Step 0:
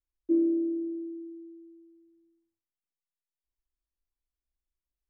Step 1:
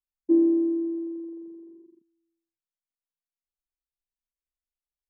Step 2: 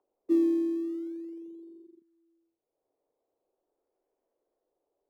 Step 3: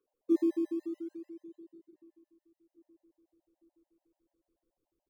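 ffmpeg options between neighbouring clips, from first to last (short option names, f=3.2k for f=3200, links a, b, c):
-af "afwtdn=0.00631,volume=5dB"
-filter_complex "[0:a]acrossover=split=260|410|450[a][b][c][d];[c]acompressor=mode=upward:threshold=-42dB:ratio=2.5[e];[d]acrusher=samples=21:mix=1:aa=0.000001:lfo=1:lforange=21:lforate=0.42[f];[a][b][e][f]amix=inputs=4:normalize=0,volume=-4.5dB"
-filter_complex "[0:a]asubboost=boost=7.5:cutoff=180,asplit=2[a][b];[b]adelay=822,lowpass=f=1.8k:p=1,volume=-24dB,asplit=2[c][d];[d]adelay=822,lowpass=f=1.8k:p=1,volume=0.55,asplit=2[e][f];[f]adelay=822,lowpass=f=1.8k:p=1,volume=0.55,asplit=2[g][h];[h]adelay=822,lowpass=f=1.8k:p=1,volume=0.55[i];[a][c][e][g][i]amix=inputs=5:normalize=0,afftfilt=real='re*gt(sin(2*PI*6.9*pts/sr)*(1-2*mod(floor(b*sr/1024/530),2)),0)':imag='im*gt(sin(2*PI*6.9*pts/sr)*(1-2*mod(floor(b*sr/1024/530),2)),0)':win_size=1024:overlap=0.75"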